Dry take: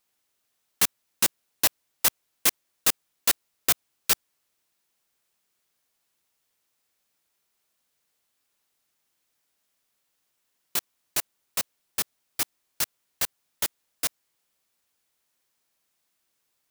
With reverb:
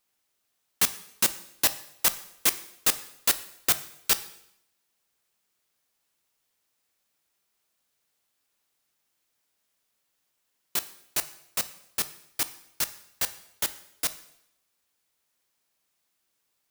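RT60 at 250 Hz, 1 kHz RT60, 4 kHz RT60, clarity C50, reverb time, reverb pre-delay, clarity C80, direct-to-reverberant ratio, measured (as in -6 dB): 0.75 s, 0.75 s, 0.75 s, 15.5 dB, 0.75 s, 6 ms, 18.0 dB, 12.0 dB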